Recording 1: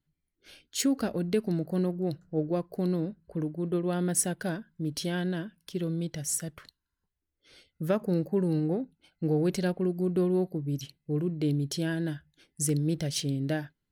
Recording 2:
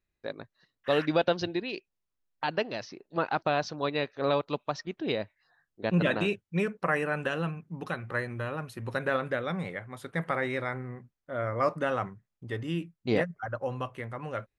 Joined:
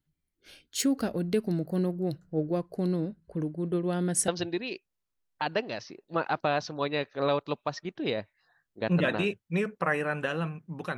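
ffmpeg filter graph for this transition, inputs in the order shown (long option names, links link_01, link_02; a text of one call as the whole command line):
ffmpeg -i cue0.wav -i cue1.wav -filter_complex "[0:a]asettb=1/sr,asplit=3[link_01][link_02][link_03];[link_01]atrim=end=2.574[link_04];[link_02]atrim=start=2.57:end=4.28,asetpts=PTS-STARTPTS,afade=type=in:duration=0.004:curve=qsin,afade=type=out:start_time=1.706:duration=0.004:curve=qsin,lowpass=frequency=11000:width=0.5412,lowpass=frequency=11000:width=1.3066[link_05];[link_03]atrim=start=4.276[link_06];[link_04][link_05]acrossfade=duration=0.004:curve1=hsin:curve2=qsin[link_07];[link_07][link_06]acrossfade=duration=0.004:curve1=qsin:curve2=hsin,apad=whole_dur=10.97,atrim=end=10.97,atrim=end=4.282[link_08];[1:a]atrim=start=1.298:end=7.99[link_09];[link_08][link_09]acrossfade=duration=0.004:curve1=hsin:curve2=hsin" out.wav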